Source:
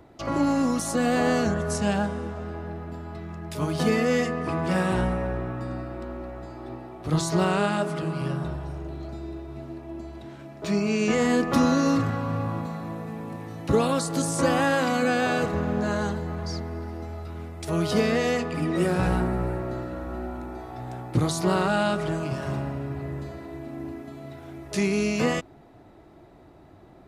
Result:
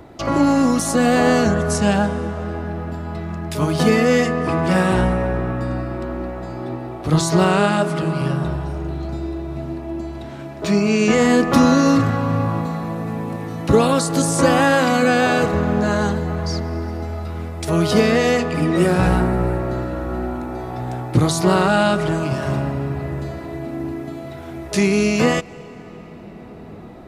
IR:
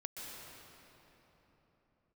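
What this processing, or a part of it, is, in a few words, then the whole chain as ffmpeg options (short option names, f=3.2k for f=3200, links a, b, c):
ducked reverb: -filter_complex "[0:a]asplit=3[a][b][c];[1:a]atrim=start_sample=2205[d];[b][d]afir=irnorm=-1:irlink=0[e];[c]apad=whole_len=1194160[f];[e][f]sidechaincompress=threshold=-39dB:ratio=4:attack=16:release=1110,volume=-3dB[g];[a][g]amix=inputs=2:normalize=0,volume=7dB"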